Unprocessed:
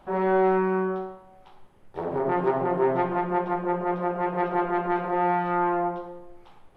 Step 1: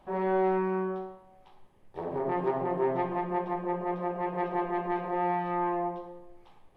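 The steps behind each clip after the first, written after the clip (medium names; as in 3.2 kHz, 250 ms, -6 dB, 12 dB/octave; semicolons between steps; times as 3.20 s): band-stop 1.4 kHz, Q 6.4; trim -5 dB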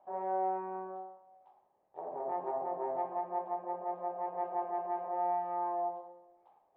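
band-pass filter 720 Hz, Q 3.2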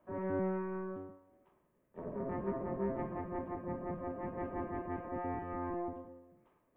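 octave divider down 1 oct, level +2 dB; static phaser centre 1.9 kHz, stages 4; trim +6 dB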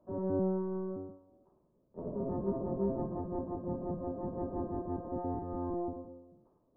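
Gaussian low-pass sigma 9.4 samples; trim +4.5 dB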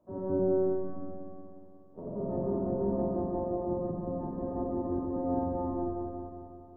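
spring tank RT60 2.7 s, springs 45/60 ms, chirp 60 ms, DRR -1.5 dB; trim -1.5 dB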